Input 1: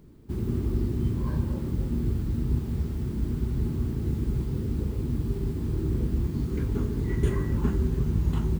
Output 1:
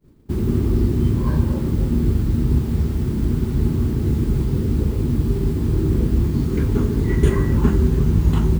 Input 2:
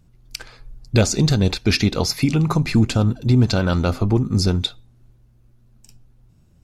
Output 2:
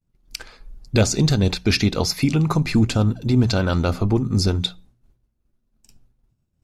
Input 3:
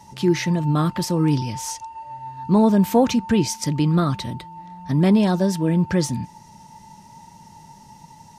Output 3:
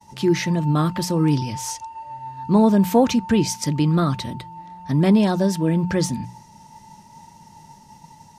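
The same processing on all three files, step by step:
expander -43 dBFS; hum notches 60/120/180 Hz; normalise loudness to -20 LUFS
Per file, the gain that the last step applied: +9.5 dB, -0.5 dB, +0.5 dB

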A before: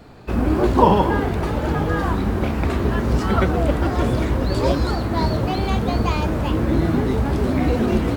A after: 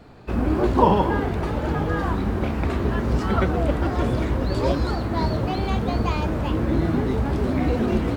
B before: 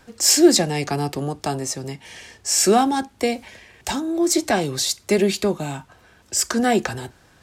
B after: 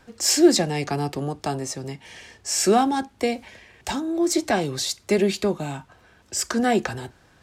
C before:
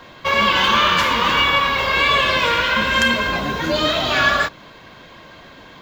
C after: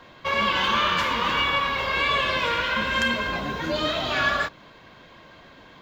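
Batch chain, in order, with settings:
treble shelf 6.6 kHz -6 dB; normalise loudness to -23 LUFS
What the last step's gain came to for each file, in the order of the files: -2.5 dB, -2.0 dB, -6.5 dB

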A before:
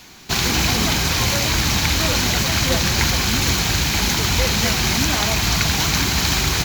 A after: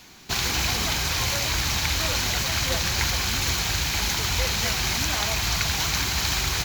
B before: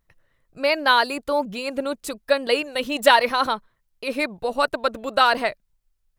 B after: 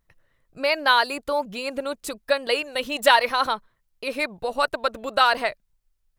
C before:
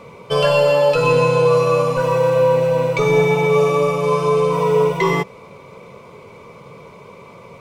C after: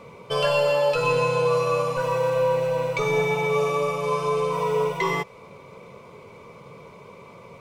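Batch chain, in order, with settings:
dynamic bell 230 Hz, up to -8 dB, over -33 dBFS, Q 0.8; normalise loudness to -23 LUFS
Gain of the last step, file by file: -5.0 dB, -0.5 dB, -4.5 dB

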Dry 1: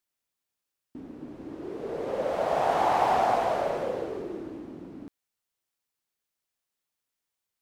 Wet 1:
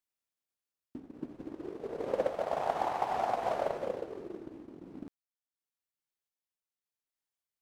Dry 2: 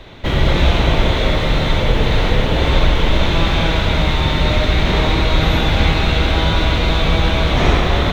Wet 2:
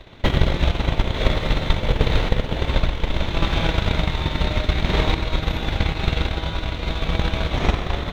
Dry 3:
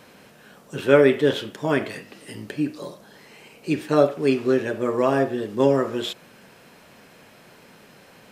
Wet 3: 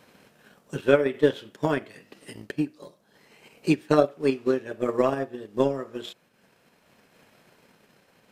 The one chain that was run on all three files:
transient shaper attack +11 dB, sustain -6 dB; random-step tremolo; trim -5.5 dB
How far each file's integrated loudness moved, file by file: -7.5 LU, -7.0 LU, -4.0 LU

